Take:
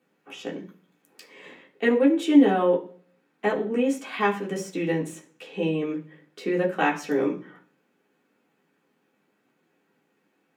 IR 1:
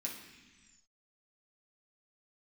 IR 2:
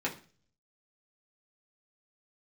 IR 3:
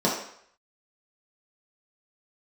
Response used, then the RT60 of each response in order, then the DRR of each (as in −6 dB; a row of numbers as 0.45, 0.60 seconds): 2; 1.3, 0.40, 0.65 seconds; −3.5, −4.5, −6.0 decibels